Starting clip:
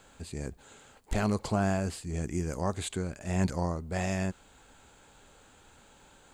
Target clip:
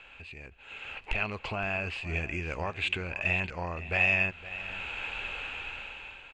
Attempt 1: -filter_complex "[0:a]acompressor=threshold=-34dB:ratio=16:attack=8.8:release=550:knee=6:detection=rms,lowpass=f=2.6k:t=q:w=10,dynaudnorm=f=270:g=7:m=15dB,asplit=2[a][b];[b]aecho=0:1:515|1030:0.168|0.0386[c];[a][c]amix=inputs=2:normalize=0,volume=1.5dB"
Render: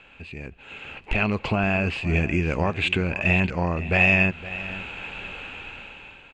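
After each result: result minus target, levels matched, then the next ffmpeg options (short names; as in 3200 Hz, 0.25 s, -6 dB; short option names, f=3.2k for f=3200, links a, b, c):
250 Hz band +7.5 dB; compressor: peak gain reduction -6 dB
-filter_complex "[0:a]acompressor=threshold=-34dB:ratio=16:attack=8.8:release=550:knee=6:detection=rms,lowpass=f=2.6k:t=q:w=10,equalizer=f=200:w=0.6:g=-10.5,dynaudnorm=f=270:g=7:m=15dB,asplit=2[a][b];[b]aecho=0:1:515|1030:0.168|0.0386[c];[a][c]amix=inputs=2:normalize=0,volume=1.5dB"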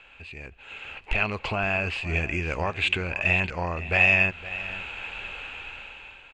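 compressor: peak gain reduction -6 dB
-filter_complex "[0:a]acompressor=threshold=-40.5dB:ratio=16:attack=8.8:release=550:knee=6:detection=rms,lowpass=f=2.6k:t=q:w=10,equalizer=f=200:w=0.6:g=-10.5,dynaudnorm=f=270:g=7:m=15dB,asplit=2[a][b];[b]aecho=0:1:515|1030:0.168|0.0386[c];[a][c]amix=inputs=2:normalize=0,volume=1.5dB"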